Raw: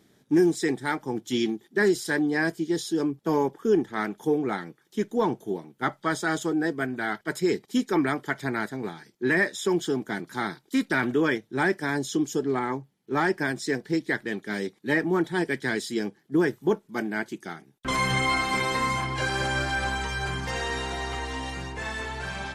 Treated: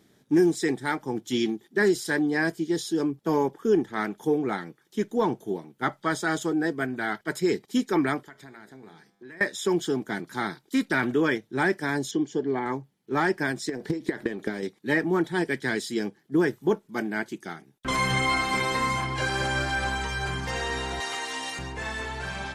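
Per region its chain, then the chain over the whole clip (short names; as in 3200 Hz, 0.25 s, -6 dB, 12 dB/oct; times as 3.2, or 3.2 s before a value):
8.23–9.41 notches 60/120/180/240/300/360/420/480/540/600 Hz + compressor 4:1, threshold -36 dBFS + resonator 100 Hz, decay 1.8 s
12.11–12.66 air absorption 130 m + notch comb 1300 Hz
13.69–14.63 bell 440 Hz +6.5 dB 2.5 oct + compressor 20:1, threshold -29 dBFS + transient shaper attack +10 dB, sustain +5 dB
21–21.59 HPF 210 Hz + tilt +2.5 dB/oct
whole clip: dry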